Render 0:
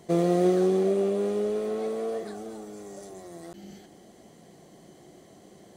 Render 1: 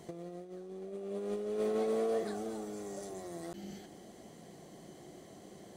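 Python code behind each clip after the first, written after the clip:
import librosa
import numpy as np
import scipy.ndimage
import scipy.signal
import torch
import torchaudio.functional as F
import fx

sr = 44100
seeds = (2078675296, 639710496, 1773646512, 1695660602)

y = fx.over_compress(x, sr, threshold_db=-30.0, ratio=-0.5)
y = y * 10.0 ** (-5.5 / 20.0)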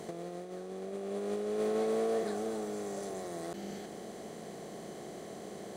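y = fx.bin_compress(x, sr, power=0.6)
y = fx.low_shelf(y, sr, hz=66.0, db=-7.0)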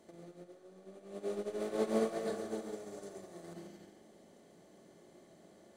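y = x + 10.0 ** (-5.5 / 20.0) * np.pad(x, (int(136 * sr / 1000.0), 0))[:len(x)]
y = fx.room_shoebox(y, sr, seeds[0], volume_m3=3000.0, walls='furnished', distance_m=2.5)
y = fx.upward_expand(y, sr, threshold_db=-40.0, expansion=2.5)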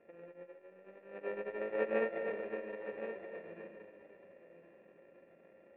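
y = np.r_[np.sort(x[:len(x) // 32 * 32].reshape(-1, 32), axis=1).ravel(), x[len(x) // 32 * 32:]]
y = fx.formant_cascade(y, sr, vowel='e')
y = y + 10.0 ** (-10.0 / 20.0) * np.pad(y, (int(1070 * sr / 1000.0), 0))[:len(y)]
y = y * 10.0 ** (11.0 / 20.0)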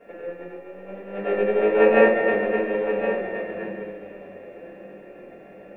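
y = fx.room_shoebox(x, sr, seeds[1], volume_m3=260.0, walls='furnished', distance_m=5.4)
y = y * 10.0 ** (8.5 / 20.0)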